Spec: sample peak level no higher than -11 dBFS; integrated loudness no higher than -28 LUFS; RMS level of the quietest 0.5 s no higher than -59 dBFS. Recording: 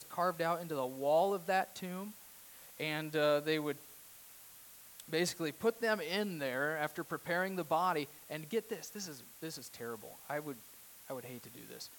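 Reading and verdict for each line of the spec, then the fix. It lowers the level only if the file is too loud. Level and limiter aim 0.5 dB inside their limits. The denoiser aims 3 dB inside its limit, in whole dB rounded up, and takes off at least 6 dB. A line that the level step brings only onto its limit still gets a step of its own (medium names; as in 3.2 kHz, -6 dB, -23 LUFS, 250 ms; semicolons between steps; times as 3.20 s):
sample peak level -20.5 dBFS: pass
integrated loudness -36.5 LUFS: pass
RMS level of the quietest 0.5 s -56 dBFS: fail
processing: noise reduction 6 dB, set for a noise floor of -56 dBFS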